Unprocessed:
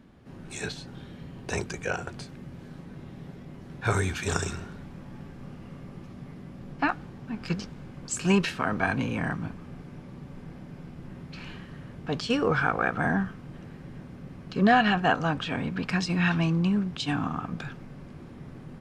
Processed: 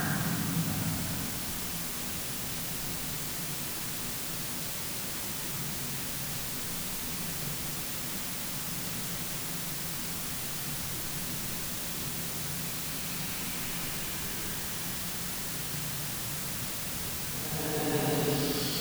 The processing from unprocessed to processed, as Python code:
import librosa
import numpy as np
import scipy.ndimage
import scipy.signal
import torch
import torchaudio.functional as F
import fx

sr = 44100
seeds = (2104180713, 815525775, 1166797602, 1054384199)

y = fx.paulstretch(x, sr, seeds[0], factor=6.5, window_s=0.25, from_s=9.33)
y = fx.quant_dither(y, sr, seeds[1], bits=6, dither='triangular')